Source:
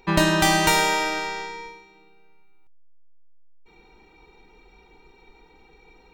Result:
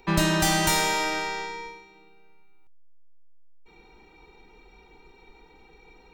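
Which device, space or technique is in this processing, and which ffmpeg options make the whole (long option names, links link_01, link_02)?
one-band saturation: -filter_complex "[0:a]acrossover=split=210|4600[link_01][link_02][link_03];[link_02]asoftclip=type=tanh:threshold=-21.5dB[link_04];[link_01][link_04][link_03]amix=inputs=3:normalize=0"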